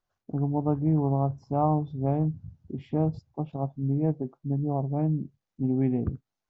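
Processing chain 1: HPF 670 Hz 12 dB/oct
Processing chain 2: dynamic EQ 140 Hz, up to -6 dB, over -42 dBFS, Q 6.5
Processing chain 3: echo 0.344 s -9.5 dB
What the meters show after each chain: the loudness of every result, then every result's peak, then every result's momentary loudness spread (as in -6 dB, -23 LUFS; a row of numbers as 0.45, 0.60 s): -38.5, -29.5, -28.0 LUFS; -17.0, -12.5, -11.5 dBFS; 17, 10, 10 LU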